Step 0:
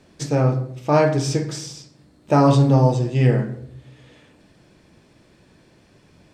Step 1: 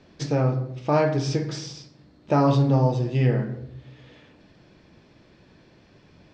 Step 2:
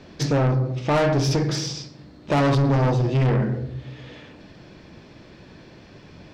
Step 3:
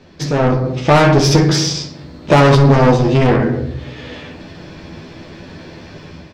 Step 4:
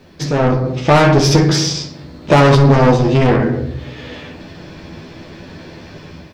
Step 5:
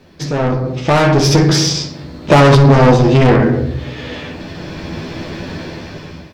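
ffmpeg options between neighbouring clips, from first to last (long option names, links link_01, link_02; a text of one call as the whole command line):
ffmpeg -i in.wav -filter_complex "[0:a]asplit=2[link_01][link_02];[link_02]acompressor=threshold=-23dB:ratio=6,volume=1dB[link_03];[link_01][link_03]amix=inputs=2:normalize=0,lowpass=frequency=5600:width=0.5412,lowpass=frequency=5600:width=1.3066,volume=-7dB" out.wav
ffmpeg -i in.wav -af "asoftclip=type=tanh:threshold=-25dB,volume=8.5dB" out.wav
ffmpeg -i in.wav -filter_complex "[0:a]dynaudnorm=framelen=150:gausssize=5:maxgain=11dB,asplit=2[link_01][link_02];[link_02]aecho=0:1:12|63:0.596|0.211[link_03];[link_01][link_03]amix=inputs=2:normalize=0,volume=-1dB" out.wav
ffmpeg -i in.wav -af "acrusher=bits=10:mix=0:aa=0.000001" out.wav
ffmpeg -i in.wav -af "asoftclip=type=tanh:threshold=-5dB,dynaudnorm=framelen=370:gausssize=7:maxgain=13dB,volume=-1dB" -ar 48000 -c:a libmp3lame -b:a 320k out.mp3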